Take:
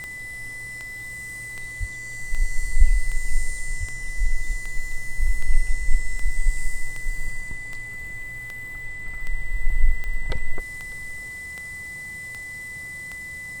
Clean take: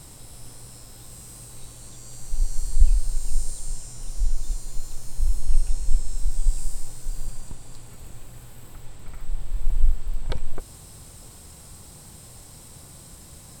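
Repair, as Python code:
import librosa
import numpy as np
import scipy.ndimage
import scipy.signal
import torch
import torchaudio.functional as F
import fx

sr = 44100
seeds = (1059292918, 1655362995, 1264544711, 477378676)

y = fx.fix_declick_ar(x, sr, threshold=10.0)
y = fx.notch(y, sr, hz=2000.0, q=30.0)
y = fx.highpass(y, sr, hz=140.0, slope=24, at=(1.79, 1.91), fade=0.02)
y = fx.highpass(y, sr, hz=140.0, slope=24, at=(3.79, 3.91), fade=0.02)
y = fx.fix_echo_inverse(y, sr, delay_ms=599, level_db=-20.0)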